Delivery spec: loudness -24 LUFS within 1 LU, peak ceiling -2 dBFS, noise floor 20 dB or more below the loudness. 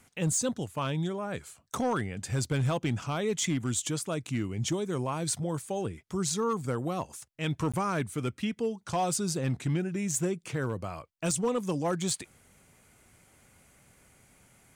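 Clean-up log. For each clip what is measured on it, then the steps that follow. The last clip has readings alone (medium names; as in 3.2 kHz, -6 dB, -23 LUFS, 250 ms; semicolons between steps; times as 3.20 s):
clipped samples 0.6%; clipping level -22.0 dBFS; dropouts 1; longest dropout 16 ms; loudness -31.5 LUFS; peak level -22.0 dBFS; loudness target -24.0 LUFS
-> clip repair -22 dBFS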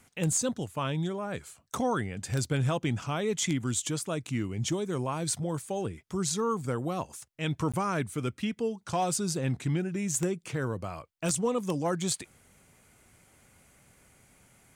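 clipped samples 0.0%; dropouts 1; longest dropout 16 ms
-> interpolate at 7.72 s, 16 ms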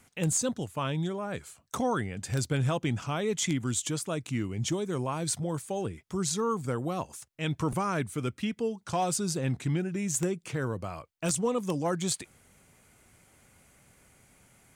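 dropouts 0; loudness -31.0 LUFS; peak level -13.0 dBFS; loudness target -24.0 LUFS
-> trim +7 dB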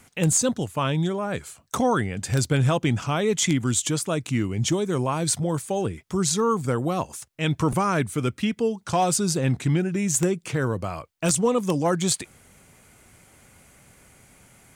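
loudness -24.0 LUFS; peak level -6.0 dBFS; noise floor -59 dBFS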